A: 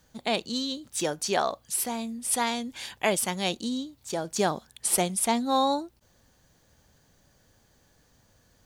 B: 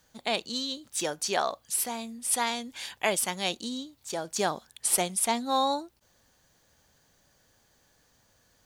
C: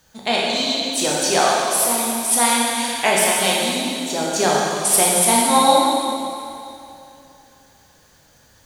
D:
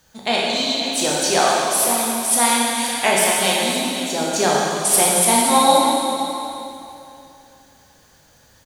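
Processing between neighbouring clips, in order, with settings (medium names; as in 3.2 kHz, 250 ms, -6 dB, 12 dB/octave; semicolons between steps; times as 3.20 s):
bass shelf 410 Hz -7.5 dB
reverberation RT60 2.7 s, pre-delay 7 ms, DRR -5 dB; trim +6.5 dB
delay 524 ms -12 dB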